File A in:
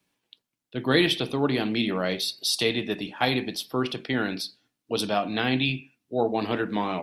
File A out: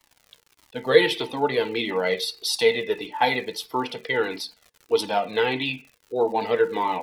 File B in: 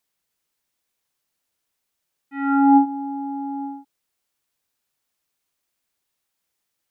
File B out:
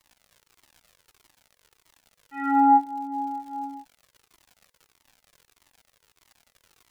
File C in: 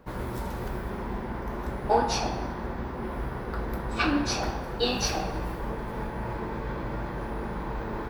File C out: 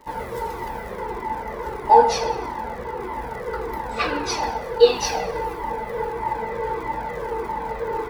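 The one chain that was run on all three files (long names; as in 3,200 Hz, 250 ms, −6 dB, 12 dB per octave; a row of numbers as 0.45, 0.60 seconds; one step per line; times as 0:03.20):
low-shelf EQ 180 Hz −11.5 dB
hollow resonant body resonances 470/890/2,000 Hz, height 16 dB, ringing for 75 ms
surface crackle 130 per second −38 dBFS
flanger whose copies keep moving one way falling 1.6 Hz
loudness normalisation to −24 LKFS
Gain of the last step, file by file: +4.0, +1.0, +6.5 decibels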